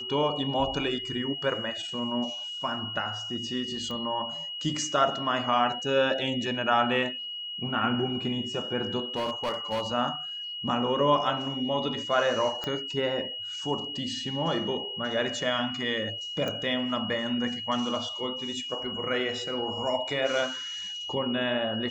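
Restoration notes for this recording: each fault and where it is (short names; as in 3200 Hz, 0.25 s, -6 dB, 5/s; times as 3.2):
tone 2900 Hz -34 dBFS
3.91 pop -24 dBFS
9.16–9.87 clipped -25 dBFS
12.64 pop -18 dBFS
16.48 pop -19 dBFS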